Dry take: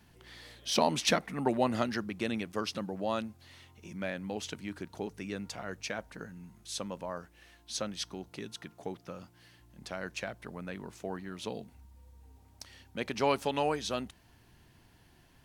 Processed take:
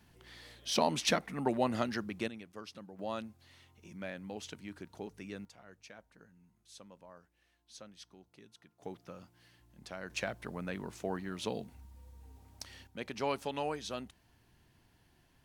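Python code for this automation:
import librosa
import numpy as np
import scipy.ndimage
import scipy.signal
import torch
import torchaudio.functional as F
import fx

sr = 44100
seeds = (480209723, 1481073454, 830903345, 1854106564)

y = fx.gain(x, sr, db=fx.steps((0.0, -2.5), (2.28, -13.0), (2.99, -6.0), (5.45, -16.0), (8.82, -5.0), (10.1, 1.5), (12.87, -6.0)))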